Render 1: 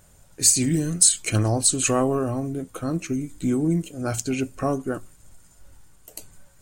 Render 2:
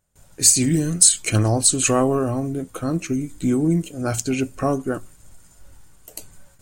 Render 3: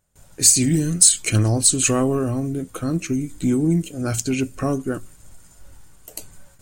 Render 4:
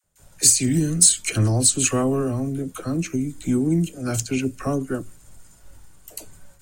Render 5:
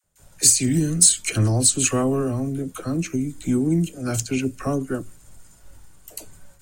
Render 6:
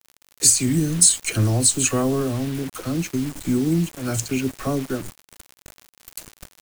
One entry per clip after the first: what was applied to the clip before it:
noise gate with hold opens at −44 dBFS; level +3 dB
dynamic equaliser 800 Hz, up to −7 dB, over −37 dBFS, Q 0.9; in parallel at −8.5 dB: soft clipping −14 dBFS, distortion −11 dB; on the sum: level −1 dB
all-pass dispersion lows, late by 44 ms, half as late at 780 Hz; level −1.5 dB
no processing that can be heard
surface crackle 110 per second −31 dBFS; bit reduction 6 bits

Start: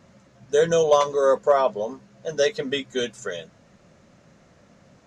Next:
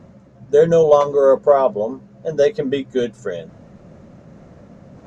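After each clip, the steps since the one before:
tilt shelving filter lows +8 dB, about 1,200 Hz
reversed playback
upward compression, threshold −36 dBFS
reversed playback
level +1 dB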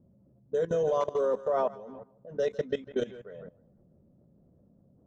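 feedback echo with a high-pass in the loop 156 ms, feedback 50%, high-pass 740 Hz, level −8.5 dB
low-pass that shuts in the quiet parts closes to 380 Hz, open at −13.5 dBFS
output level in coarse steps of 18 dB
level −8 dB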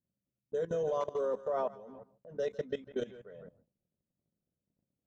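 noise gate −58 dBFS, range −24 dB
level −5.5 dB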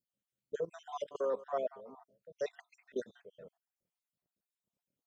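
time-frequency cells dropped at random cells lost 56%
low-shelf EQ 290 Hz −10.5 dB
level +2.5 dB

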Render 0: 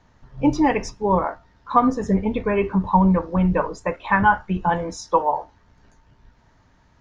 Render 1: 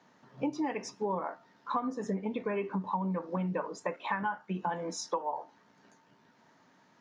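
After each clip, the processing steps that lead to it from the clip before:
high-pass filter 180 Hz 24 dB per octave
downward compressor 6 to 1, threshold −28 dBFS, peak gain reduction 16.5 dB
level −2.5 dB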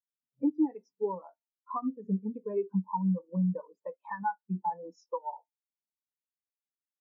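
every bin expanded away from the loudest bin 2.5 to 1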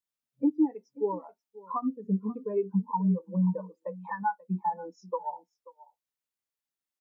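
single-tap delay 535 ms −19.5 dB
level +2.5 dB

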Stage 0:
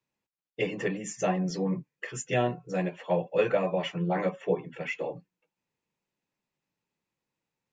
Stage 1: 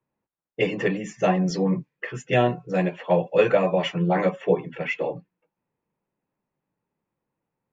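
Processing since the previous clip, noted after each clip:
low-pass that shuts in the quiet parts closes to 1,300 Hz, open at −24 dBFS
level +6.5 dB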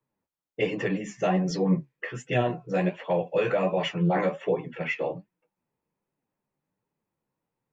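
brickwall limiter −13 dBFS, peak gain reduction 6.5 dB
flanger 1.3 Hz, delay 6.1 ms, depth 9.7 ms, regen +50%
level +2 dB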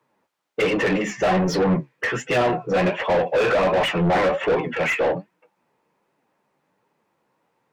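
mid-hump overdrive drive 27 dB, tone 1,900 Hz, clips at −11.5 dBFS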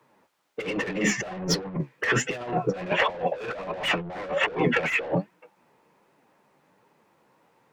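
compressor whose output falls as the input rises −26 dBFS, ratio −0.5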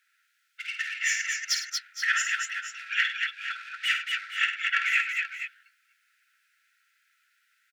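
linear-phase brick-wall high-pass 1,300 Hz
multi-tap delay 51/99/233/462/483 ms −7/−12.5/−4/−14/−12 dB

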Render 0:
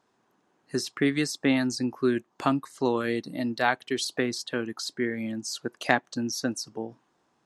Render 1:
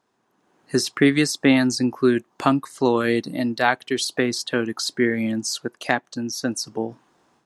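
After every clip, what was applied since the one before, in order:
parametric band 9,800 Hz +3.5 dB 0.21 octaves
automatic gain control gain up to 10 dB
level −1 dB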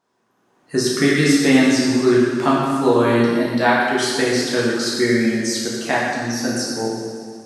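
delay with a high-pass on its return 121 ms, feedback 71%, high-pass 2,600 Hz, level −11.5 dB
dense smooth reverb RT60 1.9 s, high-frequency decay 0.65×, DRR −6.5 dB
level −3 dB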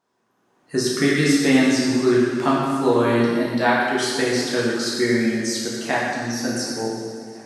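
tape delay 730 ms, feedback 56%, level −23 dB, low-pass 5,400 Hz
level −2.5 dB

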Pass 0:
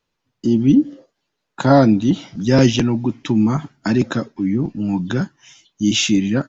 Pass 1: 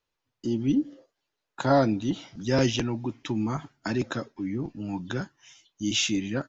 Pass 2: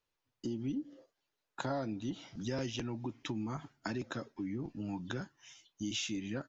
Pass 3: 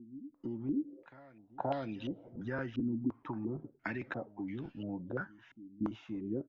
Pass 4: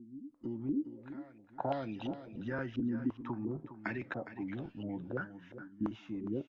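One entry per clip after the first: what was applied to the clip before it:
parametric band 190 Hz −7.5 dB 1.2 octaves; level −7 dB
downward compressor 4 to 1, threshold −32 dBFS, peak gain reduction 13 dB; level −3.5 dB
backwards echo 525 ms −19 dB; low-pass on a step sequencer 2.9 Hz 270–3,000 Hz; level −2.5 dB
single-tap delay 411 ms −12 dB; AAC 96 kbit/s 22,050 Hz

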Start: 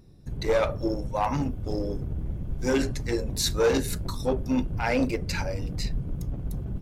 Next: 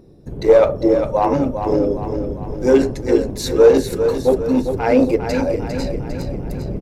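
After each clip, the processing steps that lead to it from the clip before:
repeating echo 402 ms, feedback 50%, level −8 dB
in parallel at +1 dB: speech leveller within 4 dB 2 s
on the sum: parametric band 440 Hz +14 dB 2.2 octaves
level −7 dB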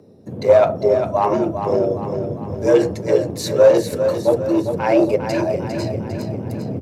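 frequency shifter +75 Hz
level −1 dB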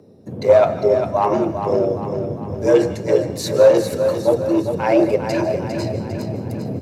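on a send at −12 dB: high-pass filter 840 Hz + convolution reverb, pre-delay 143 ms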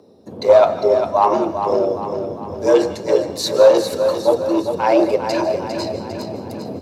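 octave-band graphic EQ 125/1,000/2,000/4,000 Hz −12/+6/−4/+7 dB

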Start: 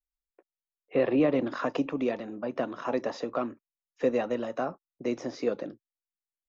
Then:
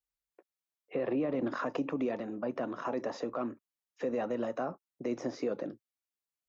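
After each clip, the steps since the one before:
high-pass filter 48 Hz
dynamic equaliser 3,700 Hz, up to −6 dB, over −53 dBFS, Q 0.87
brickwall limiter −24 dBFS, peak gain reduction 10 dB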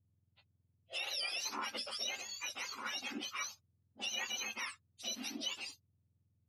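frequency axis turned over on the octave scale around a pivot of 1,200 Hz
low-shelf EQ 120 Hz +11.5 dB
level −1 dB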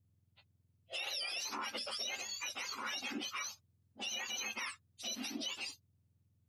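brickwall limiter −33.5 dBFS, peak gain reduction 7 dB
level +2.5 dB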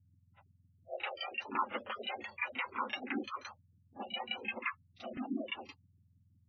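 auto-filter low-pass saw down 5.8 Hz 200–2,600 Hz
backwards echo 35 ms −12 dB
gate on every frequency bin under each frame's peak −20 dB strong
level +4.5 dB

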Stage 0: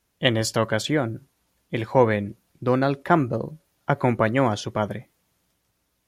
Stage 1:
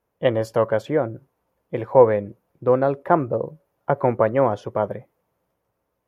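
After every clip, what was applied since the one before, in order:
octave-band graphic EQ 125/500/1,000/4,000/8,000 Hz +4/+12/+7/−8/−9 dB
level −7 dB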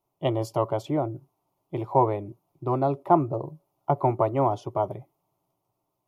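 phaser with its sweep stopped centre 330 Hz, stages 8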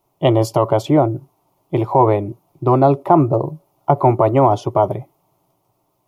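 boost into a limiter +13.5 dB
level −1 dB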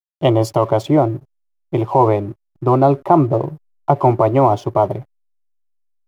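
slack as between gear wheels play −37 dBFS

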